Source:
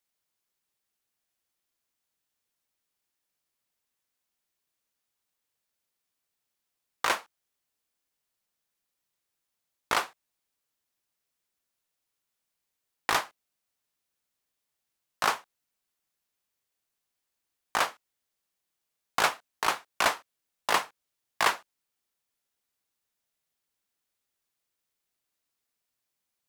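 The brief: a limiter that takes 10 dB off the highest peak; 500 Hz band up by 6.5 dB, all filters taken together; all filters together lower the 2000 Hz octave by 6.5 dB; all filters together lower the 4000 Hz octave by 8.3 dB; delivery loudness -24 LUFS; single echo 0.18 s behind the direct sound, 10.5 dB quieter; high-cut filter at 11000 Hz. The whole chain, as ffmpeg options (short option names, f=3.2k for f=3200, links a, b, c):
-af "lowpass=11k,equalizer=f=500:t=o:g=9,equalizer=f=2k:t=o:g=-7.5,equalizer=f=4k:t=o:g=-8.5,alimiter=limit=-19dB:level=0:latency=1,aecho=1:1:180:0.299,volume=12dB"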